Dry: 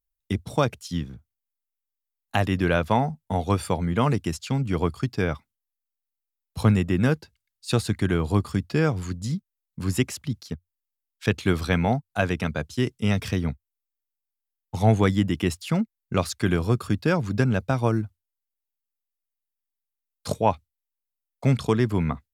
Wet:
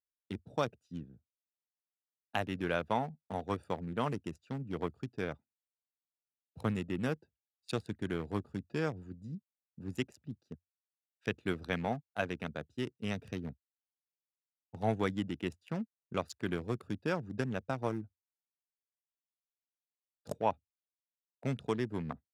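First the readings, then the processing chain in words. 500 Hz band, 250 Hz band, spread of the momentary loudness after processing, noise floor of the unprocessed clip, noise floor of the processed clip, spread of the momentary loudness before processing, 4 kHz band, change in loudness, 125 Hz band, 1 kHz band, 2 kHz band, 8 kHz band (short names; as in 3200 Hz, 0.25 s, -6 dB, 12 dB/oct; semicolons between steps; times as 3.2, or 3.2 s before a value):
-10.5 dB, -13.0 dB, 12 LU, -85 dBFS, under -85 dBFS, 10 LU, -12.0 dB, -12.5 dB, -16.5 dB, -10.0 dB, -10.5 dB, -18.0 dB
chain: Wiener smoothing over 41 samples; HPF 280 Hz 6 dB/oct; gain -8.5 dB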